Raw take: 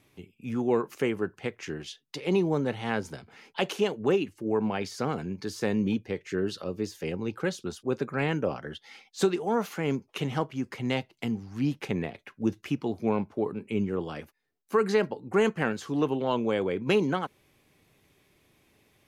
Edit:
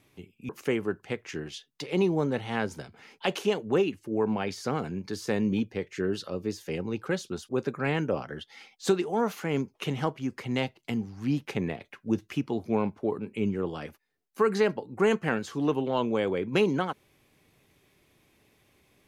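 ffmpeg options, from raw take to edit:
ffmpeg -i in.wav -filter_complex "[0:a]asplit=2[link_01][link_02];[link_01]atrim=end=0.492[link_03];[link_02]atrim=start=0.828[link_04];[link_03][link_04]acrossfade=duration=0.004:curve1=hsin:curve2=hsin" out.wav

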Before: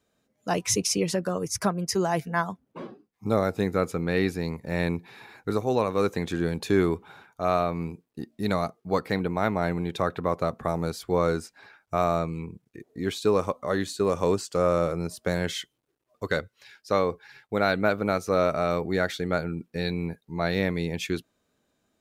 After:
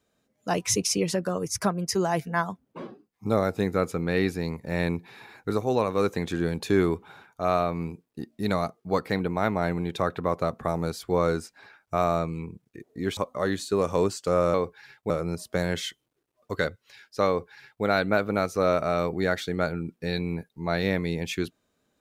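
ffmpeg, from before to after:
ffmpeg -i in.wav -filter_complex "[0:a]asplit=4[link_01][link_02][link_03][link_04];[link_01]atrim=end=13.172[link_05];[link_02]atrim=start=13.448:end=14.822[link_06];[link_03]atrim=start=16.998:end=17.562[link_07];[link_04]atrim=start=14.818[link_08];[link_05][link_06]acrossfade=duration=0.004:curve1=hsin:curve2=hsin[link_09];[link_09][link_07]acrossfade=duration=0.004:curve1=hsin:curve2=hsin[link_10];[link_10][link_08]acrossfade=duration=0.004:curve1=hsin:curve2=hsin" out.wav

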